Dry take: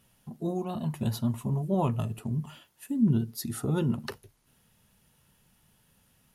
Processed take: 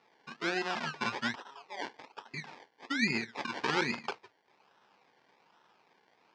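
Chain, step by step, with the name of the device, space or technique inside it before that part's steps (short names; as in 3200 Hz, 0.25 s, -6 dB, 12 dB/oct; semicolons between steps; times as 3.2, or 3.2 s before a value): 1.35–2.34 HPF 1300 Hz 12 dB/oct; circuit-bent sampling toy (decimation with a swept rate 27×, swing 60% 1.2 Hz; speaker cabinet 480–5400 Hz, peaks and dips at 610 Hz -6 dB, 890 Hz +5 dB, 1600 Hz +4 dB, 2400 Hz +4 dB, 5000 Hz +3 dB); gain +3.5 dB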